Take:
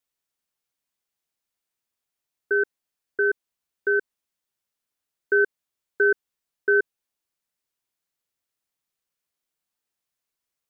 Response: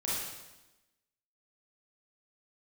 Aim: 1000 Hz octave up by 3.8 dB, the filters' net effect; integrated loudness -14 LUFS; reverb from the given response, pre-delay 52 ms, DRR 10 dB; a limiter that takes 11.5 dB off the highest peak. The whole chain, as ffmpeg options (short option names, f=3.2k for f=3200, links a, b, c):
-filter_complex "[0:a]equalizer=f=1k:t=o:g=8,alimiter=limit=-21dB:level=0:latency=1,asplit=2[a][b];[1:a]atrim=start_sample=2205,adelay=52[c];[b][c]afir=irnorm=-1:irlink=0,volume=-15.5dB[d];[a][d]amix=inputs=2:normalize=0,volume=18.5dB"